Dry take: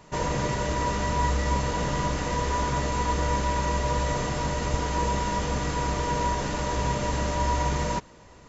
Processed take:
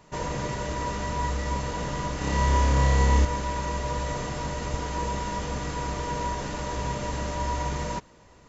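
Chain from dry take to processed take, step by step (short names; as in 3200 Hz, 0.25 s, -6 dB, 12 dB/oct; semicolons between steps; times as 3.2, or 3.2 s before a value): 2.18–3.25 flutter echo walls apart 5.1 m, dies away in 1 s; gain -3.5 dB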